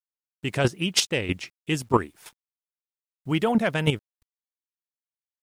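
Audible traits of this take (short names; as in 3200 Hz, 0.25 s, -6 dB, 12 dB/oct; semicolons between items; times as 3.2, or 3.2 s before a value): chopped level 3.1 Hz, depth 65%, duty 10%; a quantiser's noise floor 12-bit, dither none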